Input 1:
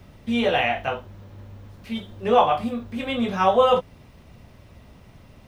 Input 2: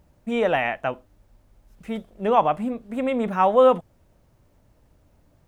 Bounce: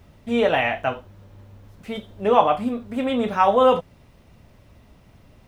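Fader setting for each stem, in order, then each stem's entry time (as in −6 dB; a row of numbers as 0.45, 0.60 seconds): −4.0, +0.5 decibels; 0.00, 0.00 seconds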